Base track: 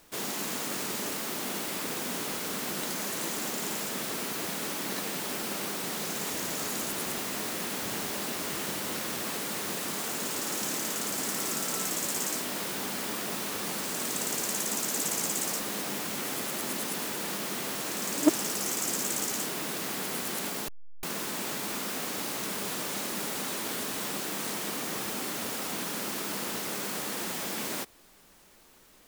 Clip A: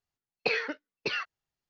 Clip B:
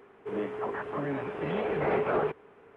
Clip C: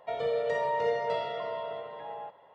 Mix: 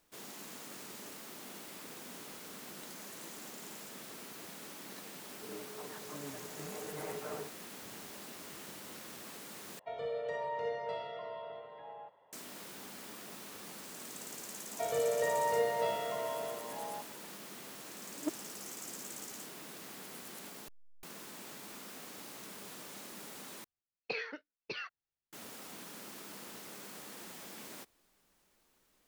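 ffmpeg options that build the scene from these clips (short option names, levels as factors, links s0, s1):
-filter_complex "[3:a]asplit=2[s0][s1];[0:a]volume=0.188[s2];[2:a]aecho=1:1:6.6:0.82[s3];[s2]asplit=3[s4][s5][s6];[s4]atrim=end=9.794[s7];[s0]atrim=end=2.54,asetpts=PTS-STARTPTS,volume=0.376[s8];[s5]atrim=start=12.326:end=23.644[s9];[1:a]atrim=end=1.69,asetpts=PTS-STARTPTS,volume=0.316[s10];[s6]atrim=start=25.326[s11];[s3]atrim=end=2.76,asetpts=PTS-STARTPTS,volume=0.133,afade=t=in:d=0.004:c=hsin,afade=t=out:st=2.756:d=0.004:c=hsin,adelay=5160[s12];[s1]atrim=end=2.54,asetpts=PTS-STARTPTS,volume=0.75,afade=t=in:d=0.004:c=hsin,afade=t=out:st=2.536:d=0.004:c=hsin,adelay=14720[s13];[s7][s8]acrossfade=d=0.004:c1=hsin:c2=hsin[s14];[s14][s9]acrossfade=d=0.004:c1=hsin:c2=hsin[s15];[s15][s10]acrossfade=d=0.004:c1=hsin:c2=hsin[s16];[s16][s11]acrossfade=d=0.004:c1=hsin:c2=hsin[s17];[s17][s12][s13]amix=inputs=3:normalize=0"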